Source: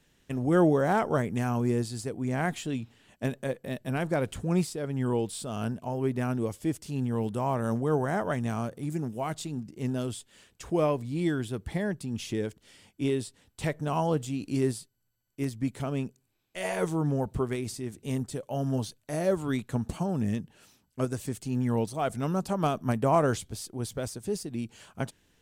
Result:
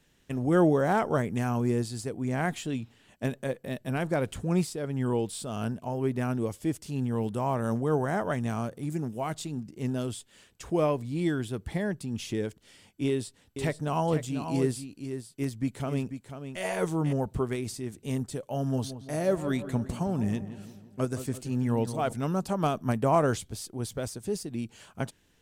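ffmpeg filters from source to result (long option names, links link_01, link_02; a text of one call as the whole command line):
ffmpeg -i in.wav -filter_complex "[0:a]asettb=1/sr,asplit=3[link_01][link_02][link_03];[link_01]atrim=end=13.074[link_04];[link_02]atrim=start=13.07:end=17.13,asetpts=PTS-STARTPTS,afade=type=in:duration=0.004:curve=qsin,afade=type=out:start_time=4.056:duration=0.004:curve=qsin,aecho=1:1:492:0.355,atrim=end_sample=179046[link_05];[link_03]atrim=start=17.126[link_06];[link_04][link_05]acrossfade=duration=0.004:curve1=hsin:curve2=qsin[link_07];[link_07][link_06]acrossfade=duration=0.004:curve1=qsin:curve2=hsin,asettb=1/sr,asplit=3[link_08][link_09][link_10];[link_08]atrim=end=18.674[link_11];[link_09]atrim=start=18.67:end=22.13,asetpts=PTS-STARTPTS,afade=type=in:duration=0.004:curve=qsin,afade=type=out:start_time=3.456:duration=0.004:curve=qsin,asplit=2[link_12][link_13];[link_13]adelay=170,lowpass=frequency=2100:poles=1,volume=-11.5dB,asplit=2[link_14][link_15];[link_15]adelay=170,lowpass=frequency=2100:poles=1,volume=0.53,asplit=2[link_16][link_17];[link_17]adelay=170,lowpass=frequency=2100:poles=1,volume=0.53,asplit=2[link_18][link_19];[link_19]adelay=170,lowpass=frequency=2100:poles=1,volume=0.53,asplit=2[link_20][link_21];[link_21]adelay=170,lowpass=frequency=2100:poles=1,volume=0.53,asplit=2[link_22][link_23];[link_23]adelay=170,lowpass=frequency=2100:poles=1,volume=0.53[link_24];[link_12][link_14][link_16][link_18][link_20][link_22][link_24]amix=inputs=7:normalize=0,atrim=end_sample=152586[link_25];[link_10]atrim=start=22.126[link_26];[link_11][link_25]acrossfade=duration=0.004:curve1=hsin:curve2=qsin[link_27];[link_27][link_26]acrossfade=duration=0.004:curve1=qsin:curve2=hsin" out.wav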